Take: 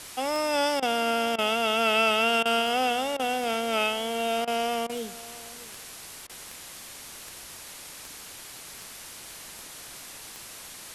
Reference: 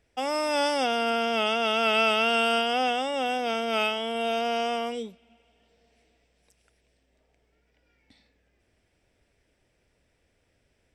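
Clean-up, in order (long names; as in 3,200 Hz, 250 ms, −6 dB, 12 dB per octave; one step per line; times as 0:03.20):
click removal
repair the gap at 0:00.80/0:01.36/0:02.43/0:03.17/0:04.45/0:04.87/0:06.27, 23 ms
noise reduction from a noise print 27 dB
echo removal 633 ms −19 dB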